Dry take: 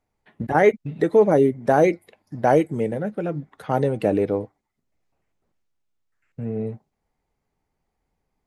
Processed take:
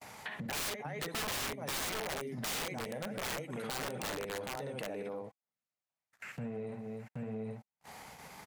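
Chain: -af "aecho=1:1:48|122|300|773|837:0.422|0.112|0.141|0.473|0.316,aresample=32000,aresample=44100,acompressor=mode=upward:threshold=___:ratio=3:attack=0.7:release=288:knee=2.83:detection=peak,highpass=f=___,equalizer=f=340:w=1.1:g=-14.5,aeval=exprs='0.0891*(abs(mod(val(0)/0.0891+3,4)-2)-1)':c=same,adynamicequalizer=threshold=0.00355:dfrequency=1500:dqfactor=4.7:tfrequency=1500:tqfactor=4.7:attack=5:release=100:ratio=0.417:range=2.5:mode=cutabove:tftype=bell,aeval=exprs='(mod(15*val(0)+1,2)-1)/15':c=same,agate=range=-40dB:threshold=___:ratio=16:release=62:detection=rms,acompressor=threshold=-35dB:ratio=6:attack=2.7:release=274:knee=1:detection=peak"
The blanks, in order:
-19dB, 210, -52dB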